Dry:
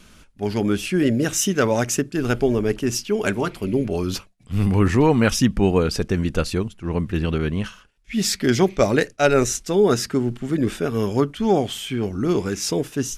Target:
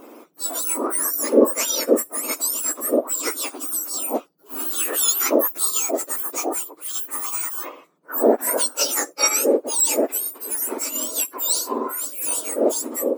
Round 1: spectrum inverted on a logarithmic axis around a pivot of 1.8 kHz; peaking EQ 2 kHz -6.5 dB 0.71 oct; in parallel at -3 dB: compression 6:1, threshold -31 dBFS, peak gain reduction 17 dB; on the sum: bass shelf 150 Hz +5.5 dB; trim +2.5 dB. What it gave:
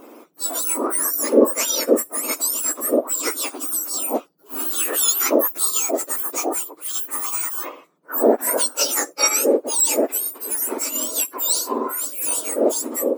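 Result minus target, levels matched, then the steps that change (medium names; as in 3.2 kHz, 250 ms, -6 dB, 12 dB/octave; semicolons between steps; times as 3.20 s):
compression: peak gain reduction -8 dB
change: compression 6:1, threshold -40.5 dBFS, peak gain reduction 25 dB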